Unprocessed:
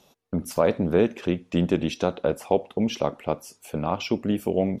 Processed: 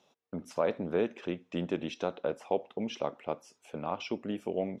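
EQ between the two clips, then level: high-pass 320 Hz 6 dB/octave; distance through air 82 m; band-stop 4.5 kHz, Q 12; -6.5 dB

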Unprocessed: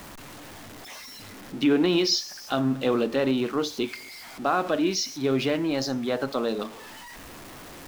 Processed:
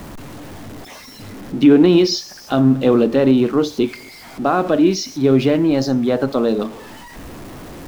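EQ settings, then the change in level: tilt shelf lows +5.5 dB, about 680 Hz; +7.5 dB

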